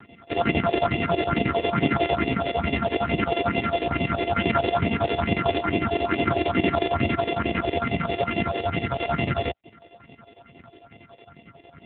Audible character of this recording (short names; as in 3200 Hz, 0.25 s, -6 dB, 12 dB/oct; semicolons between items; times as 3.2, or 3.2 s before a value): a buzz of ramps at a fixed pitch in blocks of 64 samples; phasing stages 4, 2.3 Hz, lowest notch 170–1300 Hz; chopped level 11 Hz, depth 65%, duty 65%; AMR-NB